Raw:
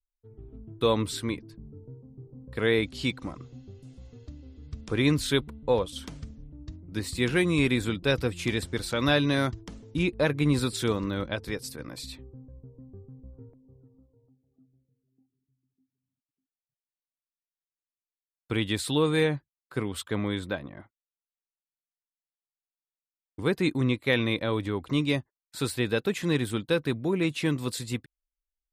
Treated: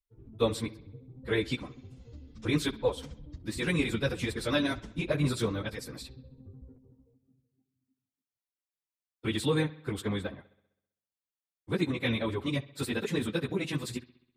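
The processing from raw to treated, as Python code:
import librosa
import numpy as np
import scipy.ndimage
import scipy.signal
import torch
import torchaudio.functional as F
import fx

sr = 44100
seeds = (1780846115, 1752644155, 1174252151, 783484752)

y = fx.stretch_vocoder_free(x, sr, factor=0.5)
y = fx.echo_bbd(y, sr, ms=65, stages=2048, feedback_pct=58, wet_db=-20.0)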